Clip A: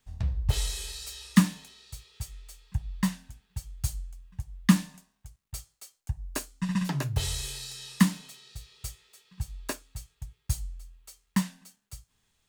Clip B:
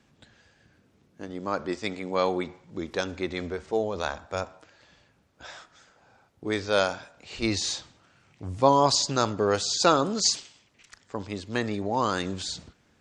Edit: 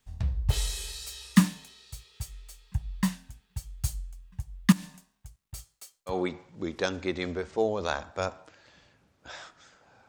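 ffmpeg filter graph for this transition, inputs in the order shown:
-filter_complex "[0:a]asettb=1/sr,asplit=3[s0][s1][s2];[s0]atrim=end=4.724[s3];[s1]atrim=start=4.72:end=6.18,asetpts=PTS-STARTPTS,afade=t=in:d=0.004:c=qsin,afade=t=out:st=1.456:d=0.004:c=qsin,acompressor=threshold=0.02:ratio=6:attack=3.2:release=140:knee=1:detection=peak[s4];[s2]atrim=start=6.176[s5];[s3][s4]acrossfade=d=0.004:c1=hsin:c2=qsin[s6];[s6][s5]acrossfade=d=0.004:c1=qsin:c2=hsin,apad=whole_dur=10.08,atrim=end=10.08,atrim=end=6.18,asetpts=PTS-STARTPTS[s7];[1:a]atrim=start=2.21:end=6.23,asetpts=PTS-STARTPTS[s8];[s7][s8]acrossfade=d=0.12:c1=tri:c2=tri"

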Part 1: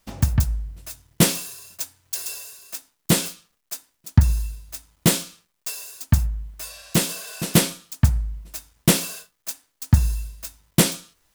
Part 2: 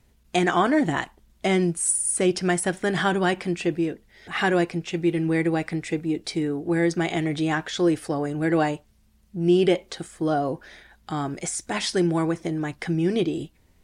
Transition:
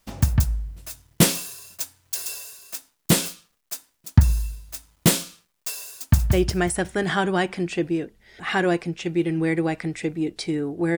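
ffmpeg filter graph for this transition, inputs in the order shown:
-filter_complex "[0:a]apad=whole_dur=10.97,atrim=end=10.97,atrim=end=6.332[s0];[1:a]atrim=start=2.208:end=6.85[s1];[s0][s1]acrossfade=d=0.004:c1=hsin:c2=hsin,asplit=2[s2][s3];[s3]afade=t=in:st=6.01:d=0.01,afade=t=out:st=6.33:d=0.01,aecho=0:1:180|360|540|720|900:0.562341|0.224937|0.0899746|0.0359898|0.0143959[s4];[s2][s4]amix=inputs=2:normalize=0"

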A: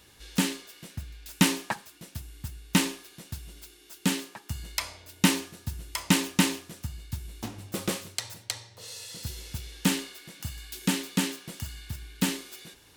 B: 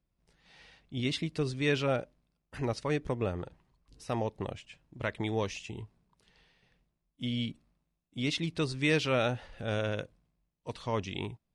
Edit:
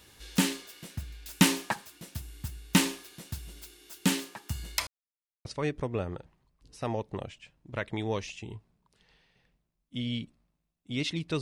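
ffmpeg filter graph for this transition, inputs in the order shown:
-filter_complex "[0:a]apad=whole_dur=11.41,atrim=end=11.41,asplit=2[s0][s1];[s0]atrim=end=4.87,asetpts=PTS-STARTPTS,afade=t=out:st=4.866:d=0.004:c=hsin[s2];[s1]atrim=start=4.87:end=5.45,asetpts=PTS-STARTPTS,volume=0[s3];[1:a]atrim=start=2.72:end=8.68,asetpts=PTS-STARTPTS,afade=t=in:d=0.004:c=hsin[s4];[s2][s3][s4]concat=n=3:v=0:a=1"

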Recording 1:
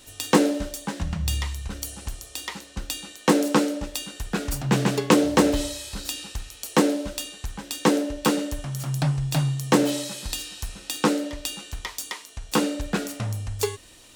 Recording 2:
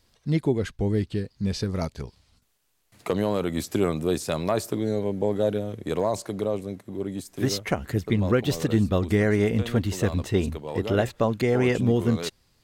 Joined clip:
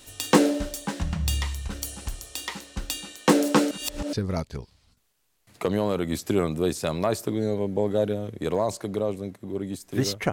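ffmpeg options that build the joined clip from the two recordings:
-filter_complex "[0:a]apad=whole_dur=10.32,atrim=end=10.32,asplit=2[s0][s1];[s0]atrim=end=3.712[s2];[s1]atrim=start=3.708:end=4.132,asetpts=PTS-STARTPTS,areverse[s3];[1:a]atrim=start=1.578:end=7.77[s4];[s2][s3]acrossfade=d=0.004:c1=hsin:c2=hsin[s5];[s5][s4]acrossfade=d=0.004:c1=hsin:c2=hsin"

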